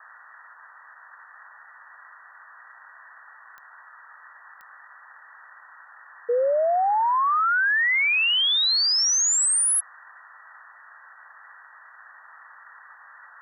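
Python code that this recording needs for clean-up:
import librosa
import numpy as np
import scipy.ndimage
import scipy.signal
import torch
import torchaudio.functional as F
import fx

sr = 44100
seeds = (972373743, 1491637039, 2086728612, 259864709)

y = fx.fix_declick_ar(x, sr, threshold=10.0)
y = fx.noise_reduce(y, sr, print_start_s=10.68, print_end_s=11.18, reduce_db=22.0)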